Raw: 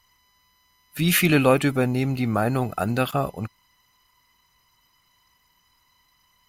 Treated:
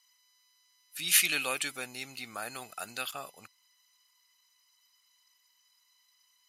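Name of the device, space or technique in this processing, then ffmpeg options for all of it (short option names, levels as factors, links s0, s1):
piezo pickup straight into a mixer: -filter_complex "[0:a]lowpass=8300,aderivative,asplit=3[s0][s1][s2];[s0]afade=t=out:st=1.13:d=0.02[s3];[s1]adynamicequalizer=threshold=0.00794:dfrequency=1800:dqfactor=0.7:tfrequency=1800:tqfactor=0.7:attack=5:release=100:ratio=0.375:range=1.5:mode=boostabove:tftype=highshelf,afade=t=in:st=1.13:d=0.02,afade=t=out:st=3:d=0.02[s4];[s2]afade=t=in:st=3:d=0.02[s5];[s3][s4][s5]amix=inputs=3:normalize=0,volume=1.33"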